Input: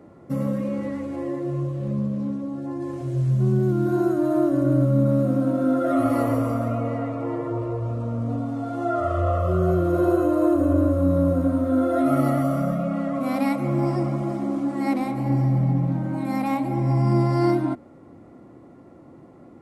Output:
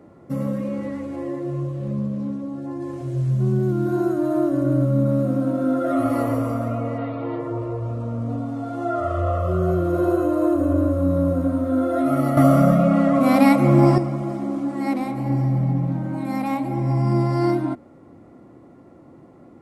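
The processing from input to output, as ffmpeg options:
-filter_complex "[0:a]asettb=1/sr,asplit=3[a][b][c];[a]atrim=end=6.984[d];[b]atrim=start=6.98:end=7.4,asetpts=PTS-STARTPTS,afade=t=in:d=0.004:c=qsin,afade=t=out:st=0.416:d=0.004:c=qsin,highshelf=f=5.4k:t=q:w=3:g=-13[e];[c]atrim=start=7.396[f];[d][e]acrossfade=d=0.004:c1=hsin:c2=qsin[g];[g][f]acrossfade=d=0.004:c1=qsin:c2=hsin,asplit=3[h][i][j];[h]atrim=end=12.372[k];[i]atrim=start=12.368:end=13.982,asetpts=PTS-STARTPTS,volume=8.5dB[l];[j]atrim=start=13.978[m];[k][l]acrossfade=d=0.004:c1=hsin:c2=hsin[n];[n][m]acrossfade=d=0.004:c1=hsin:c2=hsin"

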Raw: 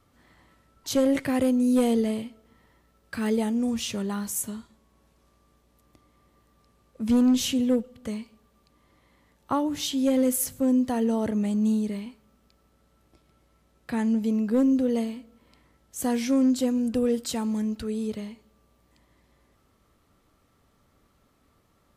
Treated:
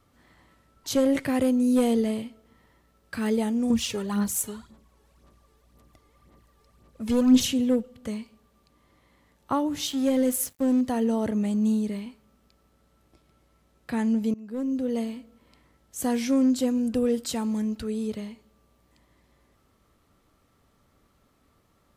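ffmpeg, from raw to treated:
-filter_complex "[0:a]asettb=1/sr,asplit=3[a][b][c];[a]atrim=end=3.704[d];[b]atrim=start=3.7:end=7.47,asetpts=PTS-STARTPTS,afade=t=in:d=0.004:c=qsin,afade=t=out:st=3.766:d=0.004:c=qsin,aphaser=in_gain=1:out_gain=1:delay=2.4:decay=0.57:speed=1.9:type=sinusoidal[e];[c]atrim=start=7.466[f];[d][e]acrossfade=d=0.004:c1=hsin:c2=qsin[g];[g][f]acrossfade=d=0.004:c1=qsin:c2=hsin,asettb=1/sr,asplit=3[h][i][j];[h]atrim=end=9.874[k];[i]atrim=start=9.87:end=10.81,asetpts=PTS-STARTPTS,afade=t=in:d=0.004:c=qsin,afade=t=out:st=0.936:d=0.004:c=qsin,aeval=exprs='sgn(val(0))*max(abs(val(0))-0.0075,0)':c=same[l];[j]atrim=start=10.806[m];[k][l]acrossfade=d=0.004:c1=hsin:c2=qsin[n];[n][m]acrossfade=d=0.004:c1=qsin:c2=hsin,asplit=2[o][p];[o]atrim=end=14.34,asetpts=PTS-STARTPTS,afade=t=out:st=14.336:d=0.004:c=hsin:silence=0.0707946[q];[p]atrim=start=14.34,asetpts=PTS-STARTPTS,afade=t=in:d=0.81:silence=0.0707946[r];[q][r]concat=n=2:v=0:a=1"

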